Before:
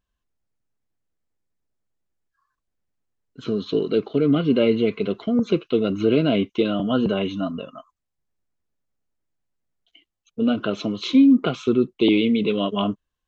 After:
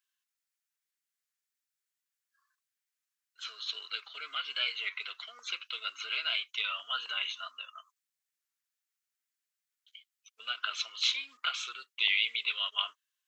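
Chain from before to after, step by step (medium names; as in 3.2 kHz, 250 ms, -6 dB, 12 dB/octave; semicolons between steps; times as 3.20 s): high-pass 1.4 kHz 24 dB/octave; treble shelf 5.5 kHz +6.5 dB; warped record 33 1/3 rpm, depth 100 cents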